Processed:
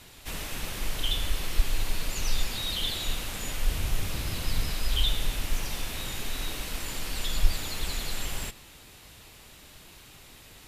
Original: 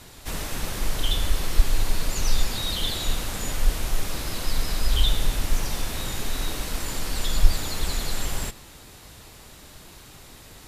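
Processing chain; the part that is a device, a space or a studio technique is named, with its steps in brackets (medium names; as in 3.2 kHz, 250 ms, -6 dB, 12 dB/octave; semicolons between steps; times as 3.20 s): presence and air boost (peaking EQ 2.7 kHz +6 dB 1 oct; treble shelf 12 kHz +5 dB); 3.71–4.71 s: peaking EQ 88 Hz +10 dB 2.1 oct; trim -6 dB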